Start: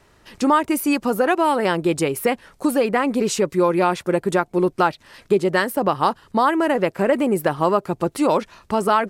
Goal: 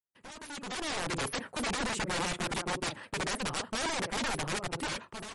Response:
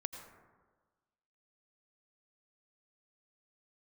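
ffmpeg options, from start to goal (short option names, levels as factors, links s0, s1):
-filter_complex "[0:a]highpass=f=100:w=0.5412,highpass=f=100:w=1.3066,agate=range=0.00708:threshold=0.00355:ratio=16:detection=peak,equalizer=f=5400:t=o:w=1.1:g=-13,areverse,acompressor=threshold=0.0316:ratio=6,areverse,asplit=2[s0][s1];[s1]adelay=70,lowpass=f=1200:p=1,volume=0.119,asplit=2[s2][s3];[s3]adelay=70,lowpass=f=1200:p=1,volume=0.2[s4];[s0][s2][s4]amix=inputs=3:normalize=0,aeval=exprs='(mod(37.6*val(0)+1,2)-1)/37.6':c=same,atempo=1.7,asoftclip=type=tanh:threshold=0.0168,dynaudnorm=f=160:g=9:m=6.31,volume=0.398" -ar 48000 -c:a libmp3lame -b:a 48k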